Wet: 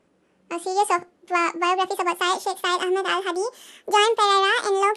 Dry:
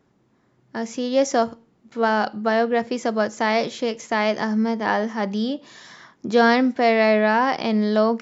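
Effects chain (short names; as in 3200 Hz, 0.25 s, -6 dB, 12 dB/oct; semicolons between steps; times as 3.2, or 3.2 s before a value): speed glide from 145% -> 186%; gain -1 dB; Vorbis 64 kbps 48000 Hz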